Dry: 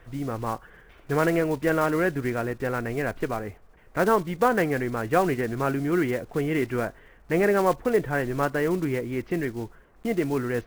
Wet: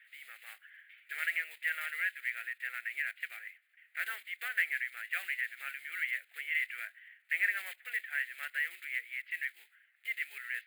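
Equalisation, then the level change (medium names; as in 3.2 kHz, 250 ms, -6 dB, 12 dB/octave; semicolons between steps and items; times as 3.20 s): ladder high-pass 1.7 kHz, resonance 55%; static phaser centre 2.5 kHz, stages 4; +5.5 dB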